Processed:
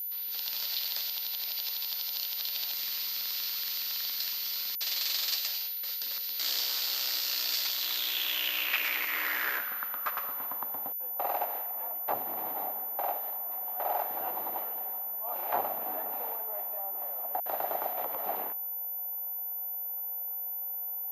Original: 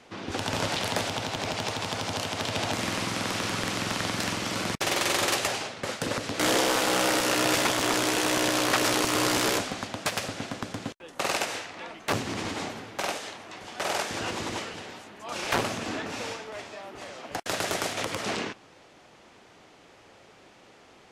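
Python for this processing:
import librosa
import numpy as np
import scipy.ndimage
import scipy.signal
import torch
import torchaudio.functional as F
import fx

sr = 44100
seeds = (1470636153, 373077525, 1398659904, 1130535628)

y = fx.filter_sweep_bandpass(x, sr, from_hz=4500.0, to_hz=770.0, start_s=7.68, end_s=10.98, q=4.0)
y = y + 10.0 ** (-37.0 / 20.0) * np.sin(2.0 * np.pi * 14000.0 * np.arange(len(y)) / sr)
y = y * librosa.db_to_amplitude(3.5)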